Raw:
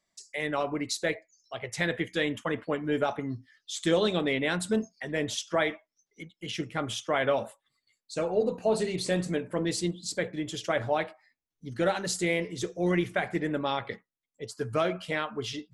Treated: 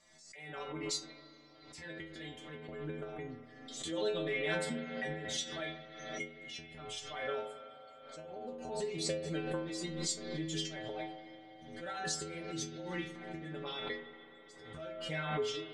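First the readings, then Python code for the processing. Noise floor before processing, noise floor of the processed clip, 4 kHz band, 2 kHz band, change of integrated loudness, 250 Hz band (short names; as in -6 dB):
under -85 dBFS, -57 dBFS, -5.5 dB, -9.5 dB, -9.5 dB, -11.5 dB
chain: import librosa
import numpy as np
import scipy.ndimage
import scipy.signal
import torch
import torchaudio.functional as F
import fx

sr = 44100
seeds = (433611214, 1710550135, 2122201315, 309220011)

y = scipy.signal.sosfilt(scipy.signal.butter(4, 8900.0, 'lowpass', fs=sr, output='sos'), x)
y = fx.auto_swell(y, sr, attack_ms=706.0)
y = fx.rider(y, sr, range_db=4, speed_s=0.5)
y = fx.transient(y, sr, attack_db=5, sustain_db=-2)
y = fx.stiff_resonator(y, sr, f0_hz=77.0, decay_s=0.84, stiffness=0.008)
y = fx.rev_spring(y, sr, rt60_s=3.6, pass_ms=(34, 42), chirp_ms=45, drr_db=7.5)
y = fx.pre_swell(y, sr, db_per_s=49.0)
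y = y * 10.0 ** (11.5 / 20.0)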